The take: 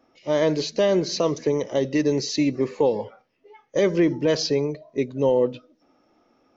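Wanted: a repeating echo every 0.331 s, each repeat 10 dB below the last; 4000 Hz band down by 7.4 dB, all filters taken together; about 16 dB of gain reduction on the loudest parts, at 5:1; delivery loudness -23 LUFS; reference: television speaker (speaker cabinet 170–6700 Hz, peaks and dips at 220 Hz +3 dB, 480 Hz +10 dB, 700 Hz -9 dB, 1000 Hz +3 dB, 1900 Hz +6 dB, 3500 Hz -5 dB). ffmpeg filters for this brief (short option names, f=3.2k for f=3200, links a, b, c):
-af "equalizer=f=4k:t=o:g=-8,acompressor=threshold=-35dB:ratio=5,highpass=f=170:w=0.5412,highpass=f=170:w=1.3066,equalizer=f=220:t=q:w=4:g=3,equalizer=f=480:t=q:w=4:g=10,equalizer=f=700:t=q:w=4:g=-9,equalizer=f=1k:t=q:w=4:g=3,equalizer=f=1.9k:t=q:w=4:g=6,equalizer=f=3.5k:t=q:w=4:g=-5,lowpass=f=6.7k:w=0.5412,lowpass=f=6.7k:w=1.3066,aecho=1:1:331|662|993|1324:0.316|0.101|0.0324|0.0104,volume=11dB"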